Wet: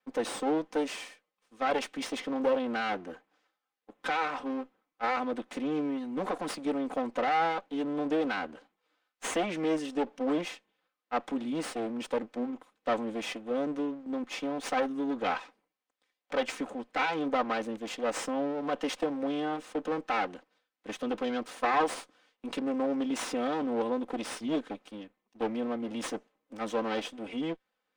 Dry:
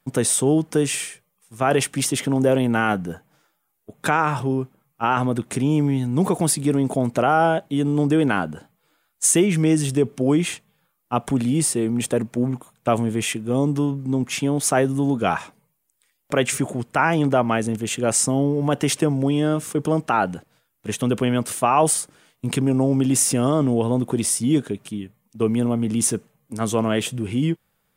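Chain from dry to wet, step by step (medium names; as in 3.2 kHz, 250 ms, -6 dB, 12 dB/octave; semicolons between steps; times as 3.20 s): comb filter that takes the minimum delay 3.9 ms; three-band isolator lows -18 dB, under 270 Hz, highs -20 dB, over 5.6 kHz; trim -7.5 dB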